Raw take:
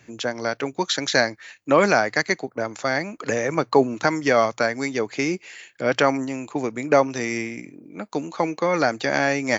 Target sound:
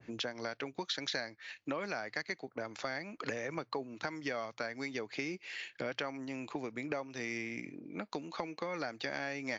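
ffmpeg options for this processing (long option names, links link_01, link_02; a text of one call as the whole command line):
ffmpeg -i in.wav -af "acompressor=threshold=-33dB:ratio=6,lowpass=frequency=5200:width=0.5412,lowpass=frequency=5200:width=1.3066,adynamicequalizer=threshold=0.00316:dfrequency=1700:dqfactor=0.7:tfrequency=1700:tqfactor=0.7:attack=5:release=100:ratio=0.375:range=2.5:mode=boostabove:tftype=highshelf,volume=-4dB" out.wav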